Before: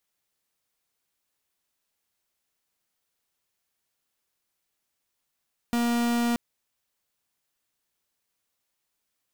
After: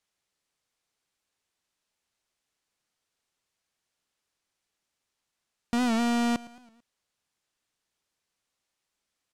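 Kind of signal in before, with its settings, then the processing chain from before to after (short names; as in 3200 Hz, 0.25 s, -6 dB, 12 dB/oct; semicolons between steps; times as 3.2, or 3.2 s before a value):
pulse 237 Hz, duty 44% -24.5 dBFS 0.63 s
LPF 8400 Hz 12 dB/oct; feedback echo 0.111 s, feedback 52%, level -19 dB; record warp 78 rpm, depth 100 cents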